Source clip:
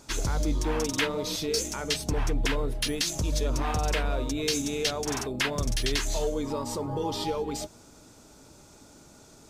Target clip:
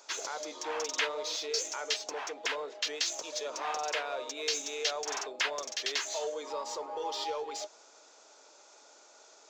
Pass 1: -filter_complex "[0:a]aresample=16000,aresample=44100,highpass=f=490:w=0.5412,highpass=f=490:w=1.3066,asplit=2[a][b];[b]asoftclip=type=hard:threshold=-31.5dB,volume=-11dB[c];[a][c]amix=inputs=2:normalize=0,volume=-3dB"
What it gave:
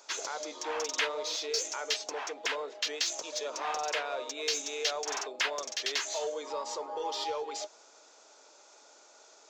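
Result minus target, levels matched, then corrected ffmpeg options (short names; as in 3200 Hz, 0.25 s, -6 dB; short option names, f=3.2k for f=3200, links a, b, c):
hard clip: distortion -4 dB
-filter_complex "[0:a]aresample=16000,aresample=44100,highpass=f=490:w=0.5412,highpass=f=490:w=1.3066,asplit=2[a][b];[b]asoftclip=type=hard:threshold=-40dB,volume=-11dB[c];[a][c]amix=inputs=2:normalize=0,volume=-3dB"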